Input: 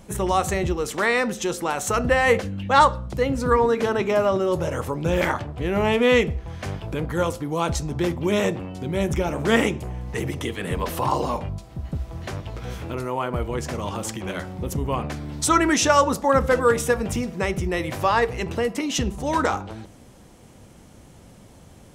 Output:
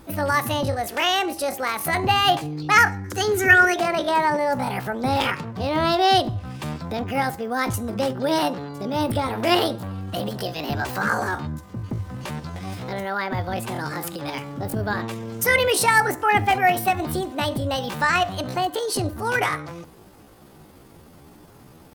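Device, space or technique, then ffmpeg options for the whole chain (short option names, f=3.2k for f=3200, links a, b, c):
chipmunk voice: -filter_complex "[0:a]asettb=1/sr,asplit=3[a][b][c];[a]atrim=end=3.044[d];[b]atrim=start=3.04:end=3.78,asetpts=PTS-STARTPTS,afade=t=in:d=0.004:c=qsin,afade=t=out:st=0.736:d=0.004:c=qsin,equalizer=f=125:t=o:w=1:g=-9,equalizer=f=250:t=o:w=1:g=8,equalizer=f=500:t=o:w=1:g=-10,equalizer=f=1k:t=o:w=1:g=11,equalizer=f=4k:t=o:w=1:g=10,equalizer=f=8k:t=o:w=1:g=9[e];[c]atrim=start=3.776[f];[d][e]acrossfade=d=0.004:c1=hsin:c2=qsin[g];[g][f]acrossfade=d=0.004:c1=qsin:c2=hsin,asetrate=68011,aresample=44100,atempo=0.64842"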